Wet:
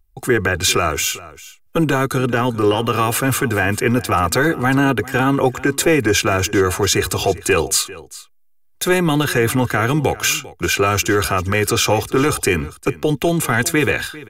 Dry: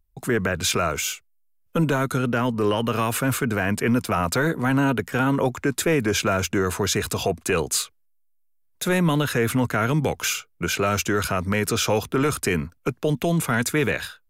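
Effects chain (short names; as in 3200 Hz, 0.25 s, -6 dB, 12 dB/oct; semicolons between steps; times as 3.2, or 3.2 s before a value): notch 440 Hz, Q 12; comb 2.5 ms, depth 52%; on a send: echo 0.397 s -18.5 dB; on the sum: gain +5.5 dB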